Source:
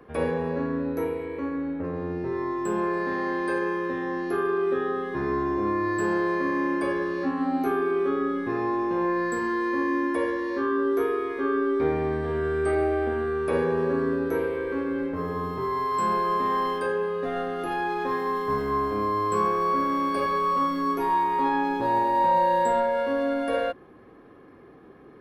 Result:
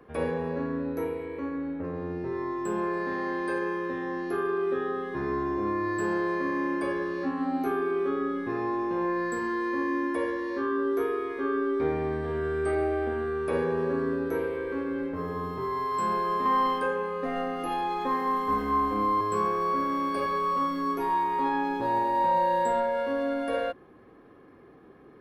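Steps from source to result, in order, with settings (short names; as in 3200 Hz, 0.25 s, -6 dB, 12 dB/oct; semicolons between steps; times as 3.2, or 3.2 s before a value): 16.45–19.21 comb 3.9 ms, depth 81%; gain -3 dB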